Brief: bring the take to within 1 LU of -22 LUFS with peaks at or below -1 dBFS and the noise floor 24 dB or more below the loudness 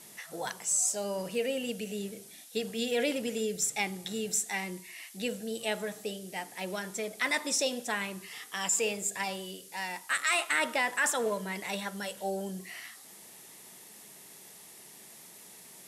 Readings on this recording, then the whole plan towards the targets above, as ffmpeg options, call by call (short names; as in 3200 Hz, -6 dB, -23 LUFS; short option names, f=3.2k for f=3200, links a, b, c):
noise floor -52 dBFS; noise floor target -56 dBFS; loudness -32.0 LUFS; peak -14.0 dBFS; loudness target -22.0 LUFS
-> -af "afftdn=nr=6:nf=-52"
-af "volume=10dB"